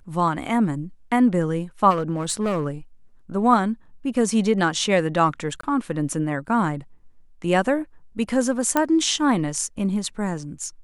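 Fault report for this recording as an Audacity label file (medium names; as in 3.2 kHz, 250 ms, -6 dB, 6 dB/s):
1.900000	2.670000	clipped -18.5 dBFS
5.610000	5.630000	dropout 24 ms
8.770000	8.770000	pop -6 dBFS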